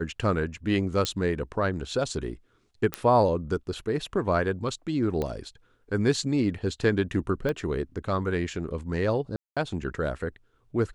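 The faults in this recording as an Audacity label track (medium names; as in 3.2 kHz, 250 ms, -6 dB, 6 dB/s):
1.050000	1.050000	pop -12 dBFS
2.940000	2.940000	pop -11 dBFS
5.220000	5.220000	pop -17 dBFS
7.490000	7.490000	pop -17 dBFS
9.360000	9.570000	dropout 206 ms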